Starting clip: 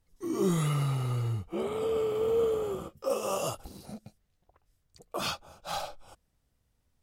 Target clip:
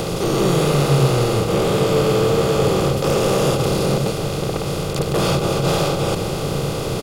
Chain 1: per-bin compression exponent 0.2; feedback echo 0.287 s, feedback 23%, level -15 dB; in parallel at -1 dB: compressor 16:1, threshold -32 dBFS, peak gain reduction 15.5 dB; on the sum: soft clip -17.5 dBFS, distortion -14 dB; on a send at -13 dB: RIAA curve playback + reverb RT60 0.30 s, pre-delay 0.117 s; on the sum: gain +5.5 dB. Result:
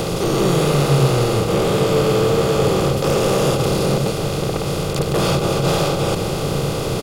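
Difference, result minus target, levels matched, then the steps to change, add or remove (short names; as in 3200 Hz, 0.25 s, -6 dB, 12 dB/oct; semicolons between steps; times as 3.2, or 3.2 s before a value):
compressor: peak gain reduction -7 dB
change: compressor 16:1, threshold -39.5 dBFS, peak gain reduction 22.5 dB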